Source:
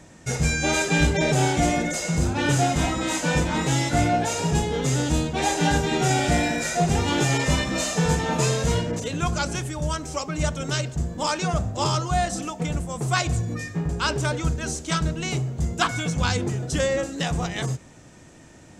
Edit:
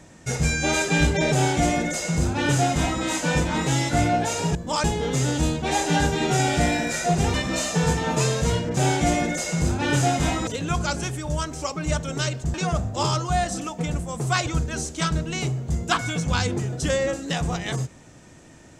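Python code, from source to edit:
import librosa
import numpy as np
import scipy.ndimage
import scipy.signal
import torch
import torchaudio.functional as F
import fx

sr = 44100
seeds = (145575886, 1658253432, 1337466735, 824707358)

y = fx.edit(x, sr, fx.duplicate(start_s=1.33, length_s=1.7, to_s=8.99),
    fx.cut(start_s=7.05, length_s=0.51),
    fx.move(start_s=11.06, length_s=0.29, to_s=4.55),
    fx.cut(start_s=13.28, length_s=1.09), tone=tone)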